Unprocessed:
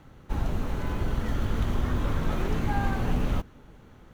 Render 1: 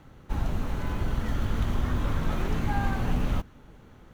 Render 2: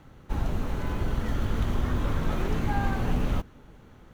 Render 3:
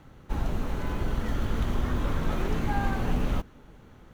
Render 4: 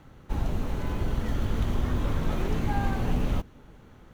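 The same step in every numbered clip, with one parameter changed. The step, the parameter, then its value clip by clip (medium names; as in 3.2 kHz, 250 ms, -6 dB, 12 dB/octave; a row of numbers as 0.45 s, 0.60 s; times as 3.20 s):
dynamic bell, frequency: 420 Hz, 9.7 kHz, 100 Hz, 1.4 kHz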